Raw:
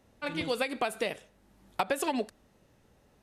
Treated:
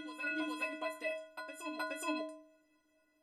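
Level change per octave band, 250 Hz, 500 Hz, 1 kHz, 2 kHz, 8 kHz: −5.5, −9.0, −8.5, −2.5, −8.5 decibels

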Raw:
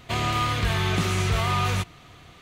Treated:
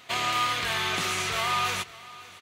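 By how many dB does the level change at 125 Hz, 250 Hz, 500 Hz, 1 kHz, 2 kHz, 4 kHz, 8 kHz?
−17.0, −10.5, −5.0, −0.5, +1.0, +1.5, +2.0 decibels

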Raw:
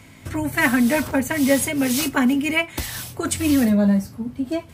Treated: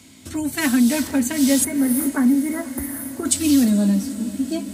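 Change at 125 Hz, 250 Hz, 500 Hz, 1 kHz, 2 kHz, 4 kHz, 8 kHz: −2.0, +2.0, −4.5, −6.0, −7.0, −1.0, +4.5 decibels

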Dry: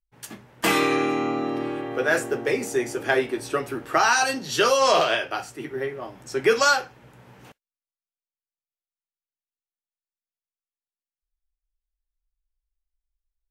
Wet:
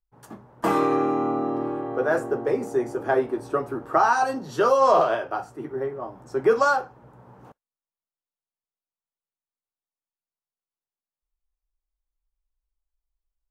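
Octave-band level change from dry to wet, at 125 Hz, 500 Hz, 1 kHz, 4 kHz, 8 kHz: 0.0, +1.0, +1.5, −15.0, −13.5 decibels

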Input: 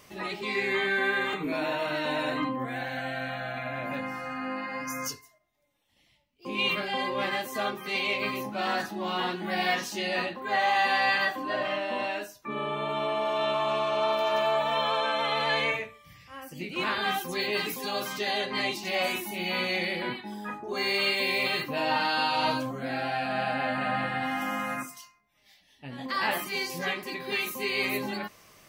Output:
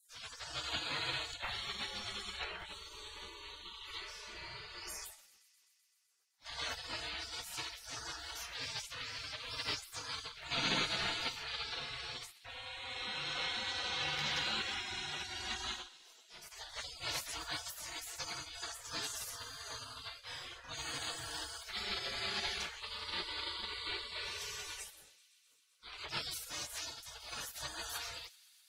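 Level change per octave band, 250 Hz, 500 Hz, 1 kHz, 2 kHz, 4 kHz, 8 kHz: −19.0, −21.0, −17.0, −13.0, −5.5, 0.0 decibels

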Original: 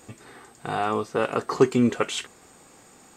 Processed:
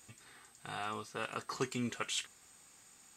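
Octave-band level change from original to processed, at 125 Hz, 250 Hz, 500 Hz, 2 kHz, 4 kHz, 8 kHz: −14.5, −17.5, −19.5, −9.5, −6.5, −5.0 decibels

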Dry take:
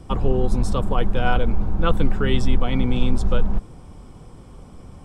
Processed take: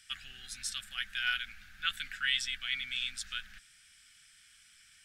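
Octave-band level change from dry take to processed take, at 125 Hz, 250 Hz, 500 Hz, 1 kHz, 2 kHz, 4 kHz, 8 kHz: −38.5 dB, below −40 dB, below −40 dB, −19.5 dB, −1.5 dB, +2.0 dB, can't be measured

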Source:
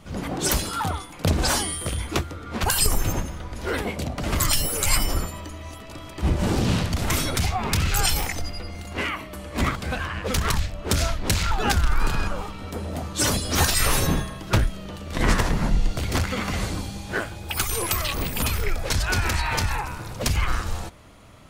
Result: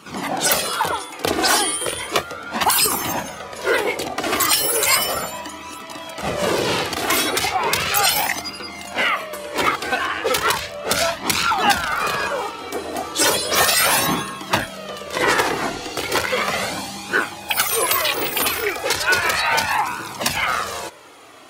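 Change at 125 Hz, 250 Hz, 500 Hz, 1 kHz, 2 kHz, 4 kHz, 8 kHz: −10.5, −0.5, +7.5, +8.5, +8.5, +7.0, +5.0 decibels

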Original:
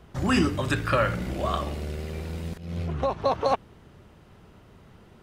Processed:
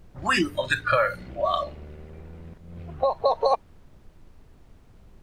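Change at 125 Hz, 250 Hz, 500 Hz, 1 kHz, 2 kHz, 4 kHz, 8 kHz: −9.0 dB, −5.5 dB, +2.5 dB, +2.5 dB, +4.5 dB, +2.5 dB, can't be measured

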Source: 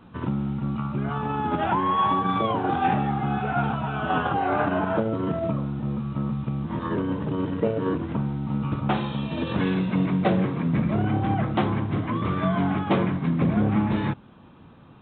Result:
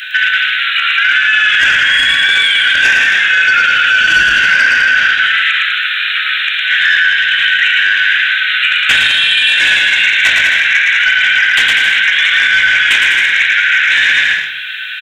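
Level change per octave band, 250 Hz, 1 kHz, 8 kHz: below −15 dB, +3.5 dB, can't be measured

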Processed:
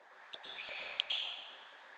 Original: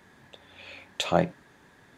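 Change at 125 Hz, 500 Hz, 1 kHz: below −40 dB, −24.5 dB, −18.5 dB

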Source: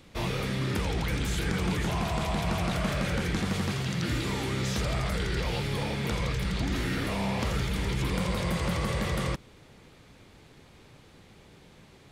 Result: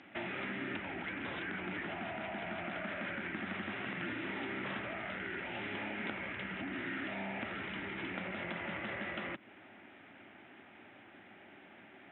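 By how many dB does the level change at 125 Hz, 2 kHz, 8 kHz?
−20.5 dB, −3.0 dB, below −40 dB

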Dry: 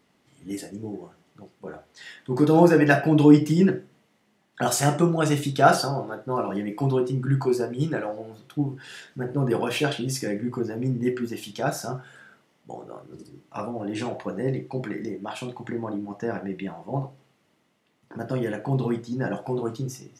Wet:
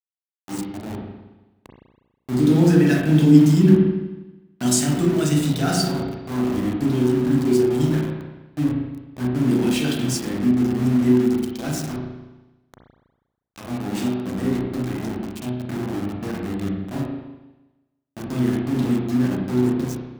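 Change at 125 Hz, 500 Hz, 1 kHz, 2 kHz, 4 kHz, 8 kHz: +5.0, 0.0, −6.0, −3.0, +3.5, +5.0 decibels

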